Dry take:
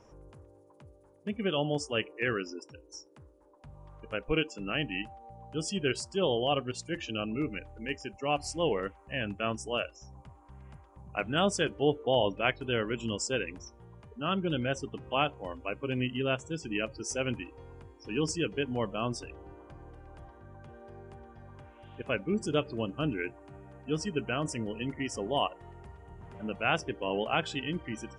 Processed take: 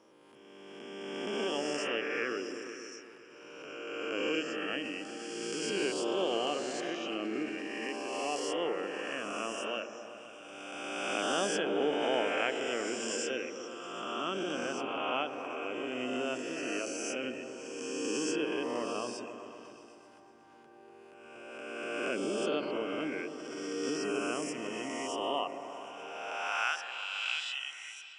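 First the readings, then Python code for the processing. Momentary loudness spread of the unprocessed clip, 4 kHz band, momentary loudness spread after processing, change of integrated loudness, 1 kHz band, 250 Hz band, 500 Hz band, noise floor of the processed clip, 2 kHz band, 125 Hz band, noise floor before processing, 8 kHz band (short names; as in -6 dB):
21 LU, -1.0 dB, 14 LU, -2.5 dB, -1.5 dB, -2.5 dB, -1.5 dB, -55 dBFS, -0.5 dB, -17.0 dB, -59 dBFS, +0.5 dB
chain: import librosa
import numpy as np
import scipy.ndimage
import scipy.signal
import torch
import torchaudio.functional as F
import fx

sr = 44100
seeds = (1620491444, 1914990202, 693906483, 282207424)

p1 = fx.spec_swells(x, sr, rise_s=2.25)
p2 = fx.filter_sweep_highpass(p1, sr, from_hz=280.0, to_hz=2600.0, start_s=25.89, end_s=27.03, q=1.7)
p3 = fx.low_shelf(p2, sr, hz=240.0, db=-8.0)
p4 = p3 + fx.echo_opening(p3, sr, ms=126, hz=400, octaves=1, feedback_pct=70, wet_db=-6, dry=0)
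p5 = fx.pre_swell(p4, sr, db_per_s=23.0)
y = F.gain(torch.from_numpy(p5), -8.5).numpy()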